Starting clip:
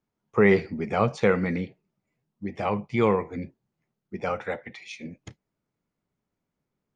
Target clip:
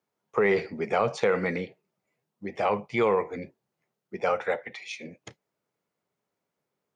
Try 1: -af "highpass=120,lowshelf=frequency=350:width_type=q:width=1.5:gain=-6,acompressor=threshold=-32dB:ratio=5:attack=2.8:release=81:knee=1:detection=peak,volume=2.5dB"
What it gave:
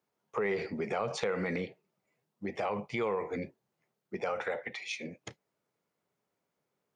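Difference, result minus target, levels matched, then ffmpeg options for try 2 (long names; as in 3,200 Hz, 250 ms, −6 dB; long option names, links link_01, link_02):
downward compressor: peak gain reduction +9 dB
-af "highpass=120,lowshelf=frequency=350:width_type=q:width=1.5:gain=-6,acompressor=threshold=-21dB:ratio=5:attack=2.8:release=81:knee=1:detection=peak,volume=2.5dB"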